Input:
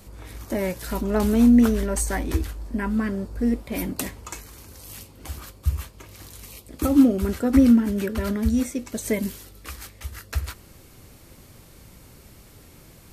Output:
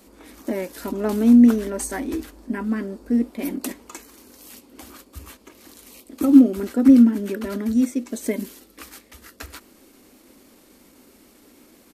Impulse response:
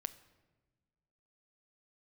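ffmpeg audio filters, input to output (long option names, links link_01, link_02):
-af "lowshelf=frequency=180:width_type=q:width=3:gain=-12,atempo=1.1,volume=-2.5dB"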